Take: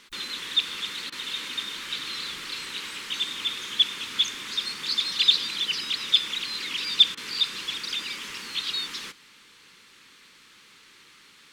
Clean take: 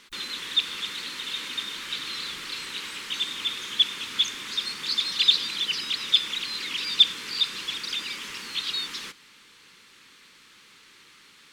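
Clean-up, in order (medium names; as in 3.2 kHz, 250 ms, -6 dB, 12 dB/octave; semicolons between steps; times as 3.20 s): interpolate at 1.10/7.15 s, 21 ms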